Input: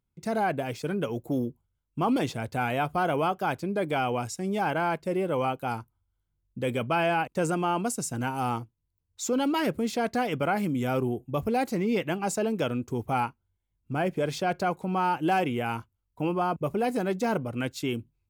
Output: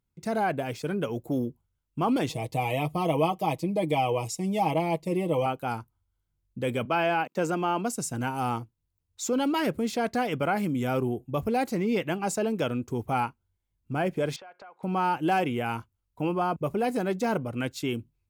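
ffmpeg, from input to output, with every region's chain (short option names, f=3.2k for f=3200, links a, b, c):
-filter_complex "[0:a]asettb=1/sr,asplit=3[a][b][c];[a]atrim=end=2.294[d];[b]atrim=start=2.29:end=5.46,asetpts=PTS-STARTPTS,afade=t=in:d=0.004:c=qsin,afade=t=out:st=3.166:d=0.004:c=qsin,asuperstop=centerf=1500:order=4:qfactor=1.8,equalizer=f=11k:w=1.6:g=3,aecho=1:1:6.3:0.7,atrim=end_sample=139797[e];[c]atrim=start=5.456[f];[d][e]acrossfade=d=0.004:c1=hsin:c2=qsin[g];[g][f]acrossfade=d=0.004:c1=qsin:c2=hsin,asettb=1/sr,asplit=3[h][i][j];[h]atrim=end=6.854[k];[i]atrim=start=6.85:end=7.93,asetpts=PTS-STARTPTS,afade=t=in:d=0.004:c=qsin,afade=t=out:st=1.076:d=0.004:c=qsin,highpass=f=170:w=0.5412,highpass=f=170:w=1.3066,equalizer=f=9.3k:w=3.2:g=-13[l];[j]atrim=start=7.926[m];[k][l]acrossfade=d=0.004:c1=hsin:c2=qsin[n];[n][m]acrossfade=d=0.004:c1=qsin:c2=hsin,asettb=1/sr,asplit=3[o][p][q];[o]atrim=end=14.364[r];[p]atrim=start=14.36:end=14.83,asetpts=PTS-STARTPTS,afade=t=in:d=0.004:c=qsin,afade=t=out:st=0.466:d=0.004:c=qsin,highpass=770,lowpass=2.1k,acompressor=threshold=-44dB:ratio=10:attack=3.2:release=140:knee=1:detection=peak[s];[q]atrim=start=14.826[t];[r][s]acrossfade=d=0.004:c1=hsin:c2=qsin[u];[u][t]acrossfade=d=0.004:c1=qsin:c2=hsin"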